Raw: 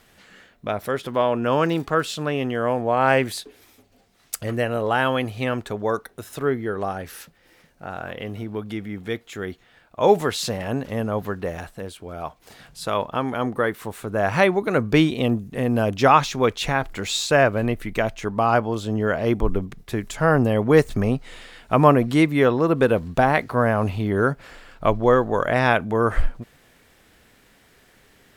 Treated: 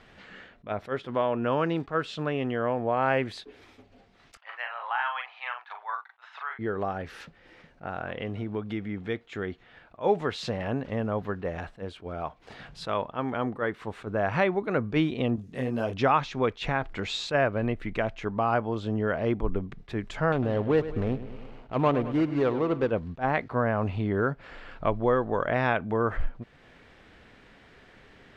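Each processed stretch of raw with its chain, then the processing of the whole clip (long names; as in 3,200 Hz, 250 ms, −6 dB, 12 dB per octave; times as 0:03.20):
0:04.37–0:06.59: elliptic high-pass filter 860 Hz, stop band 80 dB + high-frequency loss of the air 240 metres + double-tracking delay 41 ms −5.5 dB
0:15.36–0:15.94: bass and treble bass −3 dB, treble +14 dB + micro pitch shift up and down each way 27 cents
0:20.32–0:22.91: running median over 25 samples + parametric band 180 Hz −4.5 dB 0.92 octaves + repeating echo 103 ms, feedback 51%, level −14 dB
whole clip: low-pass filter 3,300 Hz 12 dB per octave; downward compressor 1.5 to 1, threshold −40 dBFS; level that may rise only so fast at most 320 dB per second; level +2.5 dB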